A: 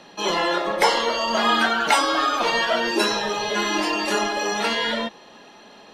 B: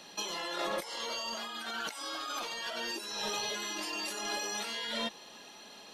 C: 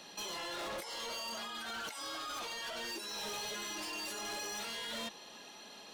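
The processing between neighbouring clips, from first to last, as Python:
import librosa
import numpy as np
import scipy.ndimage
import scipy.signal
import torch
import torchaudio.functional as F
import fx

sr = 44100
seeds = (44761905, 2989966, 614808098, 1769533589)

y1 = scipy.signal.lfilter([1.0, -0.8], [1.0], x)
y1 = fx.notch(y1, sr, hz=1800.0, q=28.0)
y1 = fx.over_compress(y1, sr, threshold_db=-38.0, ratio=-1.0)
y2 = np.clip(y1, -10.0 ** (-37.5 / 20.0), 10.0 ** (-37.5 / 20.0))
y2 = F.gain(torch.from_numpy(y2), -1.0).numpy()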